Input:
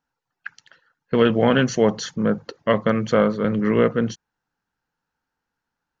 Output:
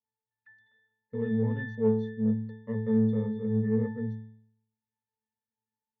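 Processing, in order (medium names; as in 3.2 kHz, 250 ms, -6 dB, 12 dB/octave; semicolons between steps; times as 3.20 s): pitch-class resonator A, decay 0.67 s; in parallel at -9.5 dB: saturation -28.5 dBFS, distortion -11 dB; on the sum: trim +2 dB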